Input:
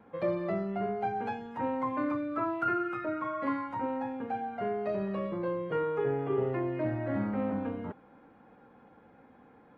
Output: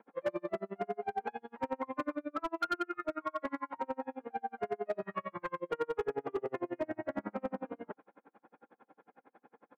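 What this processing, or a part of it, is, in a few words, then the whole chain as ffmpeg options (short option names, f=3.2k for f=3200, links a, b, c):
helicopter radio: -filter_complex "[0:a]highpass=320,lowpass=2.8k,aeval=exprs='val(0)*pow(10,-38*(0.5-0.5*cos(2*PI*11*n/s))/20)':c=same,asoftclip=type=hard:threshold=-30.5dB,asettb=1/sr,asplit=3[a][b][c];[a]atrim=end=5.024[d];[b]atrim=start=5.02:end=5.6,asetpts=PTS-STARTPTS,afade=t=in:d=0.004:c=qsin,afade=t=out:st=0.576:d=0.004:c=qsin,equalizer=f=125:t=o:w=1:g=10,equalizer=f=250:t=o:w=1:g=-7,equalizer=f=500:t=o:w=1:g=-8,equalizer=f=1k:t=o:w=1:g=6,equalizer=f=2k:t=o:w=1:g=7[e];[c]atrim=start=5.596[f];[d][e]acrossfade=d=0.004:c1=hsin:c2=qsin[g];[g][f]acrossfade=d=0.004:c1=qsin:c2=hsin,volume=4dB"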